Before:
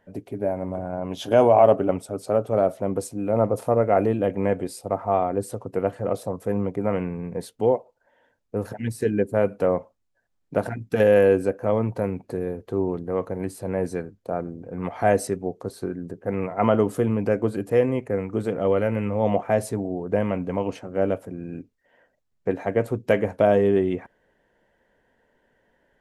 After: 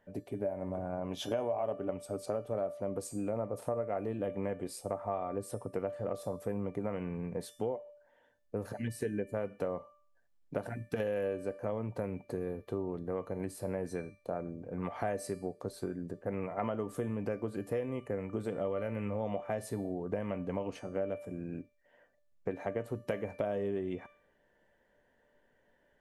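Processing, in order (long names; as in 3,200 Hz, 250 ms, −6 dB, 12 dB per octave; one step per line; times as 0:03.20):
tuned comb filter 590 Hz, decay 0.5 s, mix 80%
downward compressor 6 to 1, threshold −39 dBFS, peak gain reduction 16.5 dB
level +7.5 dB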